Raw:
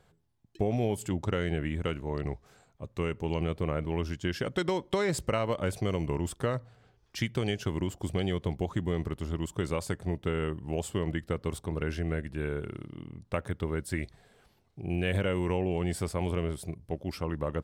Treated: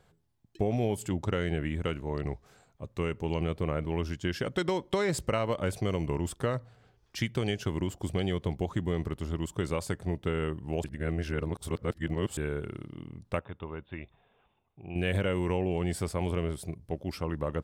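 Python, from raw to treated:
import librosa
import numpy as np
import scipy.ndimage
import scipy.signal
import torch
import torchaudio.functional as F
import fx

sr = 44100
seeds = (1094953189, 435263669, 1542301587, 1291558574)

y = fx.cheby_ripple(x, sr, hz=3700.0, ripple_db=9, at=(13.39, 14.96))
y = fx.edit(y, sr, fx.reverse_span(start_s=10.84, length_s=1.53), tone=tone)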